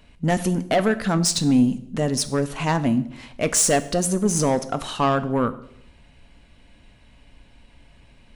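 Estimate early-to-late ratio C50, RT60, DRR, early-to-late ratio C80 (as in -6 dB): 15.5 dB, 0.70 s, 12.0 dB, 18.5 dB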